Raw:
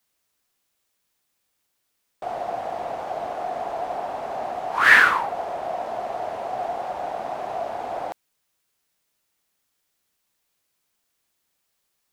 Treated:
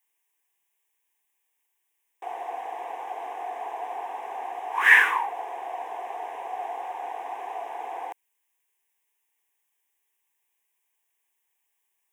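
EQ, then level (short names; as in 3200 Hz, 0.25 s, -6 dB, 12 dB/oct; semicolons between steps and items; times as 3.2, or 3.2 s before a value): HPF 530 Hz 12 dB/oct; fixed phaser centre 900 Hz, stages 8; 0.0 dB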